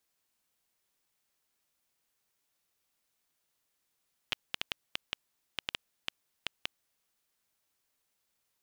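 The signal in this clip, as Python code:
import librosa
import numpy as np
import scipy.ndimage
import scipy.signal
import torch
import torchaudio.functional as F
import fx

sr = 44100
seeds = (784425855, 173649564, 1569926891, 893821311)

y = fx.geiger_clicks(sr, seeds[0], length_s=2.36, per_s=5.3, level_db=-13.5)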